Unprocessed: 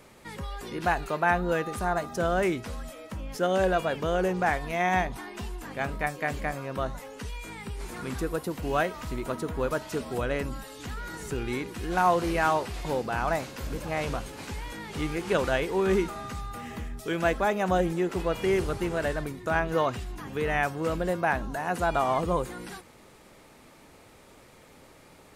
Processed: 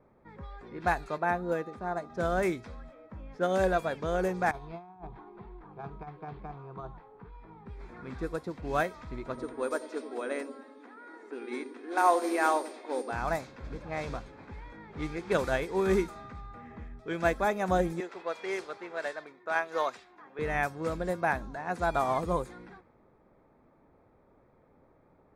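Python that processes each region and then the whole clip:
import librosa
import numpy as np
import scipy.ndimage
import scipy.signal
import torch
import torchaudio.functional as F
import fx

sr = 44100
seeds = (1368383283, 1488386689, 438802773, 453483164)

y = fx.chain(x, sr, fx.highpass(hz=370.0, slope=6),
    fx.tilt_shelf(db=6.5, hz=700.0), at=(1.18, 2.1))
y = fx.chain(y, sr, fx.fixed_phaser(hz=380.0, stages=8),
    fx.over_compress(threshold_db=-33.0, ratio=-0.5),
    fx.resample_linear(factor=6), at=(4.51, 7.66))
y = fx.brickwall_highpass(y, sr, low_hz=230.0, at=(9.34, 13.11), fade=0.02)
y = fx.dmg_tone(y, sr, hz=8800.0, level_db=-45.0, at=(9.34, 13.11), fade=0.02)
y = fx.echo_wet_lowpass(y, sr, ms=92, feedback_pct=50, hz=470.0, wet_db=-4.5, at=(9.34, 13.11), fade=0.02)
y = fx.chain(y, sr, fx.highpass(hz=490.0, slope=12),
    fx.peak_eq(hz=4100.0, db=3.0, octaves=2.2), at=(18.0, 20.39))
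y = fx.notch(y, sr, hz=2900.0, q=5.2)
y = fx.env_lowpass(y, sr, base_hz=990.0, full_db=-22.5)
y = fx.upward_expand(y, sr, threshold_db=-35.0, expansion=1.5)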